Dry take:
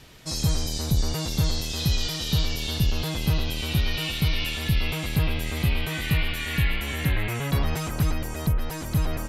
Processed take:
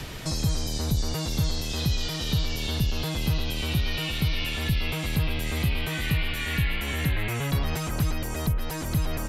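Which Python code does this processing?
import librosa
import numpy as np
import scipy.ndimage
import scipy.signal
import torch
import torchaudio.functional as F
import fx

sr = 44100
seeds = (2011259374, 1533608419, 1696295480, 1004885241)

y = fx.band_squash(x, sr, depth_pct=70)
y = F.gain(torch.from_numpy(y), -2.5).numpy()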